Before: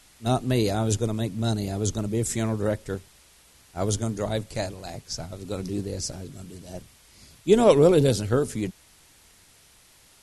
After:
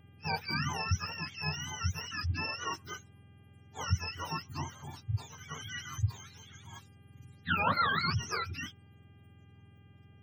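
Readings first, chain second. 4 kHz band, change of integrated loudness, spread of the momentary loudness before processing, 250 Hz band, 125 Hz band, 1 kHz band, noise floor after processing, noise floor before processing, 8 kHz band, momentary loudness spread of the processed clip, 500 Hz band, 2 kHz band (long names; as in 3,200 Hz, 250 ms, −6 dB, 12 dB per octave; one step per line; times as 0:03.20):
−2.5 dB, −9.5 dB, 21 LU, −17.5 dB, −8.5 dB, −1.5 dB, −59 dBFS, −56 dBFS, −11.0 dB, 17 LU, −24.0 dB, +4.0 dB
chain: frequency axis turned over on the octave scale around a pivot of 770 Hz
gate on every frequency bin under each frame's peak −30 dB strong
hum with harmonics 400 Hz, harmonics 8, −62 dBFS −1 dB per octave
level −7.5 dB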